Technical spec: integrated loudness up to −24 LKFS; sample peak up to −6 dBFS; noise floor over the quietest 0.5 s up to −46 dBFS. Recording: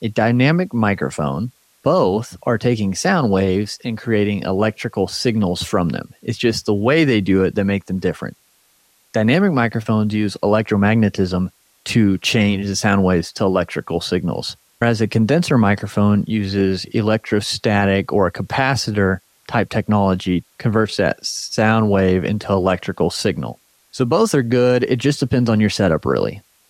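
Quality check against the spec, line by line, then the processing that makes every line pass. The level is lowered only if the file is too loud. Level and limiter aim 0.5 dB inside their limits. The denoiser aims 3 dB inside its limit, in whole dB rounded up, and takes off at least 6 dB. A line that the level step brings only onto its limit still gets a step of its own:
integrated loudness −18.0 LKFS: out of spec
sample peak −5.0 dBFS: out of spec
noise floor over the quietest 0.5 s −58 dBFS: in spec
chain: level −6.5 dB

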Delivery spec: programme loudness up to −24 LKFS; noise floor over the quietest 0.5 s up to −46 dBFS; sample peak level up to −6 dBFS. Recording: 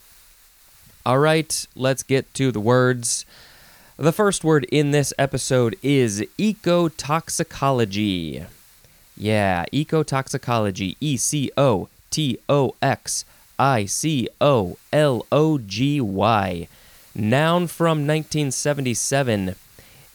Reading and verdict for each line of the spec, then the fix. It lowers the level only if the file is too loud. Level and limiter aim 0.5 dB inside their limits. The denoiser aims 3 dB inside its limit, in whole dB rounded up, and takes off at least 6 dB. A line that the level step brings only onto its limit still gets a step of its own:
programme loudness −21.0 LKFS: out of spec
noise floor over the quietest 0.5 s −52 dBFS: in spec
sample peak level −4.0 dBFS: out of spec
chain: level −3.5 dB

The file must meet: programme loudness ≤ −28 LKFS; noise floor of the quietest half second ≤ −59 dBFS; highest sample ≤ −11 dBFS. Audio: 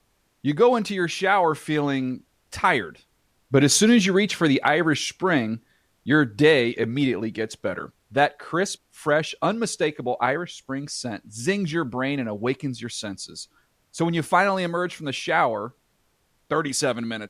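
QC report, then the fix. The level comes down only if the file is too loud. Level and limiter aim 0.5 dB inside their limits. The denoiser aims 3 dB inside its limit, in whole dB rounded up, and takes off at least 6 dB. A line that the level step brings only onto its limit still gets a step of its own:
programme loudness −23.0 LKFS: out of spec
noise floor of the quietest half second −67 dBFS: in spec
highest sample −6.0 dBFS: out of spec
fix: level −5.5 dB

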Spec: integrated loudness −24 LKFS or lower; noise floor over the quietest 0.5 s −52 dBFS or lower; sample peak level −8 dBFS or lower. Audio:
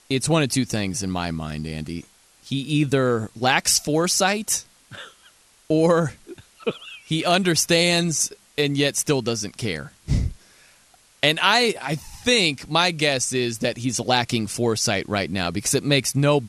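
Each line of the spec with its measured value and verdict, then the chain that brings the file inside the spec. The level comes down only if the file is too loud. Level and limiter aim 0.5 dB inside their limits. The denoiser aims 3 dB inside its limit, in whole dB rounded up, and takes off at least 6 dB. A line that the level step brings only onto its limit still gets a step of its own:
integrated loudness −21.5 LKFS: out of spec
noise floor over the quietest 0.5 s −56 dBFS: in spec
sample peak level −3.5 dBFS: out of spec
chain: level −3 dB
brickwall limiter −8.5 dBFS

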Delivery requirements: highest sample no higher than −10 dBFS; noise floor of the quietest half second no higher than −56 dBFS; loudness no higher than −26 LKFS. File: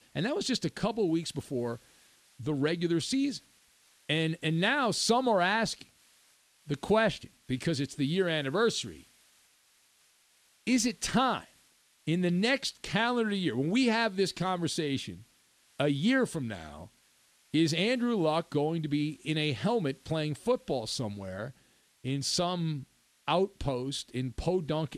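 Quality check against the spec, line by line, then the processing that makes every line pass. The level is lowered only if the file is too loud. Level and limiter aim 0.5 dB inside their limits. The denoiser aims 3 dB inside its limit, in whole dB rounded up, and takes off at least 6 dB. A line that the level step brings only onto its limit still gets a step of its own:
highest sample −12.0 dBFS: in spec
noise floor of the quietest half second −66 dBFS: in spec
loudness −30.0 LKFS: in spec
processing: no processing needed

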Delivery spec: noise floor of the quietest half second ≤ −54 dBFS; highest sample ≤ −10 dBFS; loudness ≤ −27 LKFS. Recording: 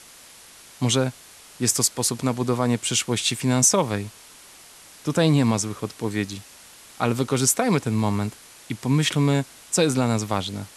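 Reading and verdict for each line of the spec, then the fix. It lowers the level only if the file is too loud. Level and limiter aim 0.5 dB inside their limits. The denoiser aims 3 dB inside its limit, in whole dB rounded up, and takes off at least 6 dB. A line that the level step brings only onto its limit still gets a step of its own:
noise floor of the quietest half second −47 dBFS: out of spec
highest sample −5.5 dBFS: out of spec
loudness −22.5 LKFS: out of spec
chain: broadband denoise 6 dB, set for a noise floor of −47 dBFS
level −5 dB

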